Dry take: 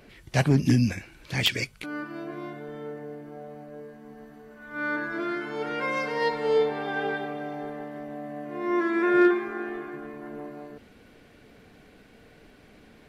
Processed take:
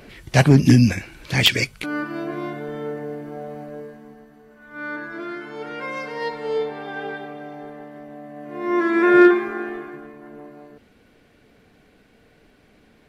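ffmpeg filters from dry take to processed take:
-af "volume=17.5dB,afade=t=out:st=3.66:d=0.59:silence=0.334965,afade=t=in:st=8.34:d=0.8:silence=0.334965,afade=t=out:st=9.14:d=1:silence=0.316228"

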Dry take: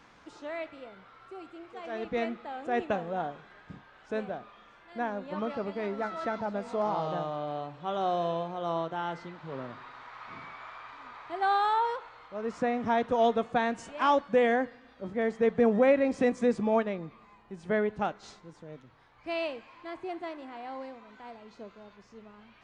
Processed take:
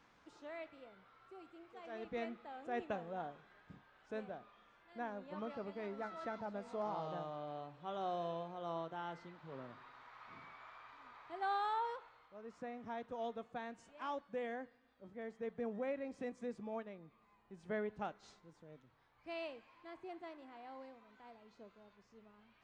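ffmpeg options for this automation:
-af "volume=-5dB,afade=t=out:st=11.94:d=0.49:silence=0.446684,afade=t=in:st=17.01:d=0.54:silence=0.501187"

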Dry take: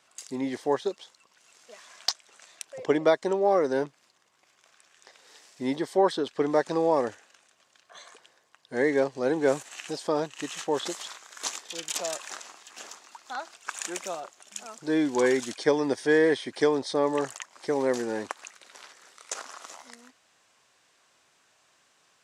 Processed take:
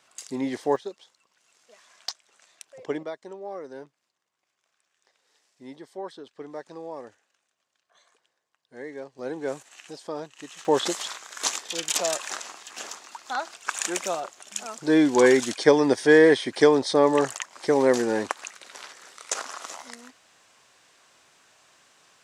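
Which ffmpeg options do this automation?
-af "asetnsamples=n=441:p=0,asendcmd='0.76 volume volume -6dB;3.03 volume volume -14dB;9.19 volume volume -7dB;10.65 volume volume 6dB',volume=2dB"

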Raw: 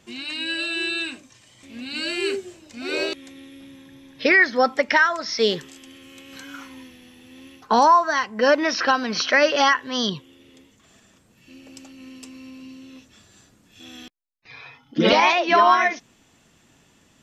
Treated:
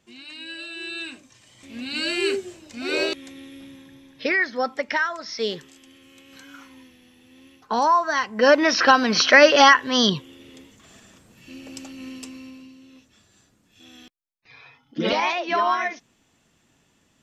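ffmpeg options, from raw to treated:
-af "volume=12.5dB,afade=t=in:st=0.78:d=1.01:silence=0.281838,afade=t=out:st=3.59:d=0.73:silence=0.421697,afade=t=in:st=7.75:d=1.27:silence=0.281838,afade=t=out:st=12.08:d=0.64:silence=0.281838"

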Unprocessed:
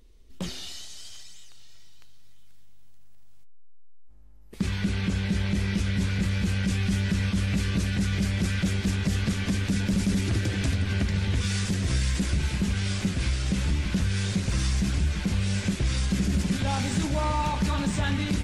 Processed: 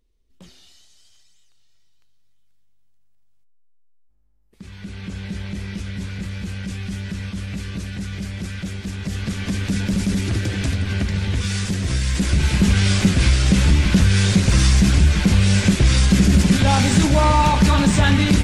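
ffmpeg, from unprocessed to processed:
-af "volume=11dB,afade=t=in:st=4.62:d=0.62:silence=0.334965,afade=t=in:st=8.91:d=0.81:silence=0.446684,afade=t=in:st=12.04:d=0.67:silence=0.446684"

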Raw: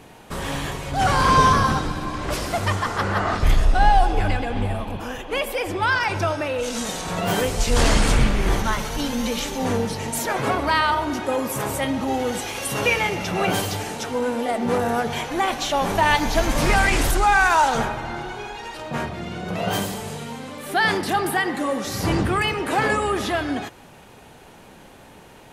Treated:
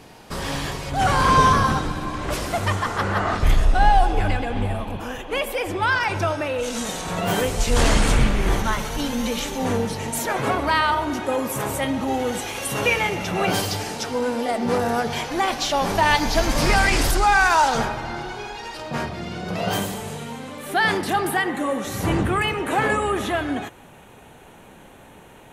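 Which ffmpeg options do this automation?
-af "asetnsamples=n=441:p=0,asendcmd='0.9 equalizer g -2.5;13.47 equalizer g 6.5;19.74 equalizer g -3.5;21.44 equalizer g -11.5',equalizer=f=4.9k:t=o:w=0.4:g=7.5"

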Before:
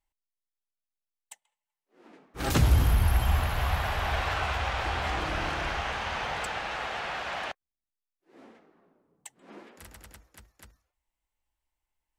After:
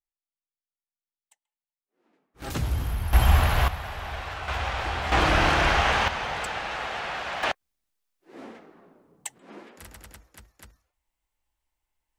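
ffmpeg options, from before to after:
-af "asetnsamples=n=441:p=0,asendcmd='2.42 volume volume -6dB;3.13 volume volume 6.5dB;3.68 volume volume -5.5dB;4.48 volume volume 1dB;5.12 volume volume 10dB;6.08 volume volume 2dB;7.43 volume volume 10dB;9.38 volume volume 3dB',volume=-15dB"

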